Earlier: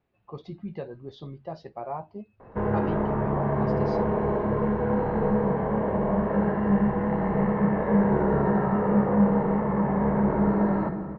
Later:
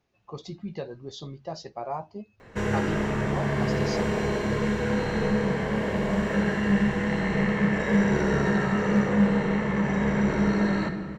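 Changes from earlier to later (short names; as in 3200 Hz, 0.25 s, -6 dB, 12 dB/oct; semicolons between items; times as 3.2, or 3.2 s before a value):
speech: remove air absorption 330 m; background: remove synth low-pass 920 Hz, resonance Q 1.8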